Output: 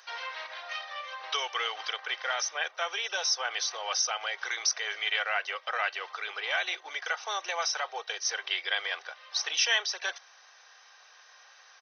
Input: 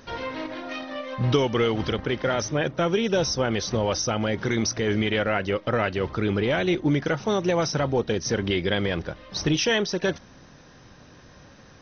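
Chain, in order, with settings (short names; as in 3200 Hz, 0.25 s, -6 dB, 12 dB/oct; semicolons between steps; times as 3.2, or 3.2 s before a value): Bessel high-pass 1100 Hz, order 8; comb 2.6 ms, depth 35%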